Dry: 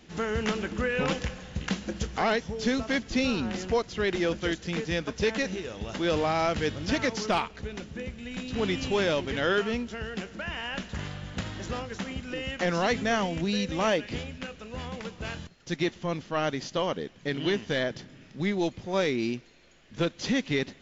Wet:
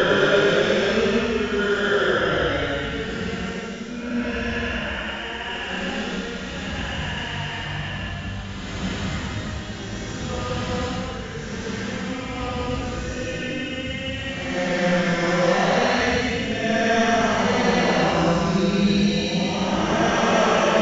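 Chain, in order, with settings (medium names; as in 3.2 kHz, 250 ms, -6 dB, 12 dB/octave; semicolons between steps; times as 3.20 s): chunks repeated in reverse 374 ms, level -0.5 dB; Paulstretch 4.7×, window 0.25 s, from 9.49 s; trim +4.5 dB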